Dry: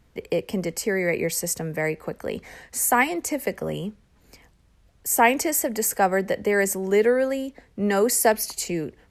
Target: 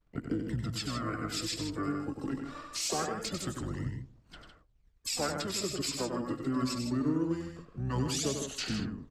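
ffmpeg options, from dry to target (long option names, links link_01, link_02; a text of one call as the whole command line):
ffmpeg -i in.wav -filter_complex "[0:a]asetrate=27781,aresample=44100,atempo=1.5874,asplit=2[link_01][link_02];[link_02]adelay=88,lowpass=frequency=2700:poles=1,volume=-24dB,asplit=2[link_03][link_04];[link_04]adelay=88,lowpass=frequency=2700:poles=1,volume=0.53,asplit=2[link_05][link_06];[link_06]adelay=88,lowpass=frequency=2700:poles=1,volume=0.53[link_07];[link_03][link_05][link_07]amix=inputs=3:normalize=0[link_08];[link_01][link_08]amix=inputs=2:normalize=0,aphaser=in_gain=1:out_gain=1:delay=3.7:decay=0.58:speed=0.23:type=sinusoidal,agate=range=-33dB:threshold=-41dB:ratio=3:detection=peak,acompressor=threshold=-33dB:ratio=2.5,asplit=3[link_09][link_10][link_11];[link_10]asetrate=22050,aresample=44100,atempo=2,volume=-10dB[link_12];[link_11]asetrate=66075,aresample=44100,atempo=0.66742,volume=-12dB[link_13];[link_09][link_12][link_13]amix=inputs=3:normalize=0,asplit=2[link_14][link_15];[link_15]aecho=0:1:96.21|157.4:0.501|0.398[link_16];[link_14][link_16]amix=inputs=2:normalize=0,volume=-4dB" out.wav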